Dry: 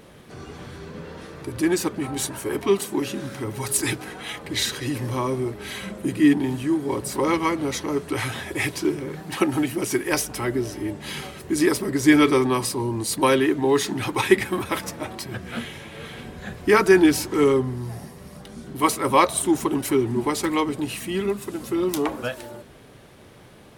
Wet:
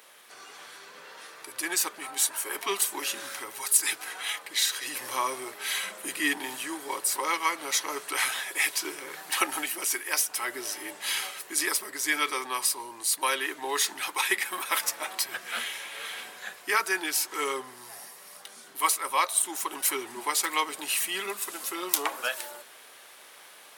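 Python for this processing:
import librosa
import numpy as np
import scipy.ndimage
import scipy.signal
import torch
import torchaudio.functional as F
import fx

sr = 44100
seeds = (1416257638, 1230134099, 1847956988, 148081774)

y = scipy.signal.sosfilt(scipy.signal.butter(2, 980.0, 'highpass', fs=sr, output='sos'), x)
y = fx.high_shelf(y, sr, hz=7900.0, db=9.0)
y = fx.rider(y, sr, range_db=4, speed_s=0.5)
y = F.gain(torch.from_numpy(y), -1.0).numpy()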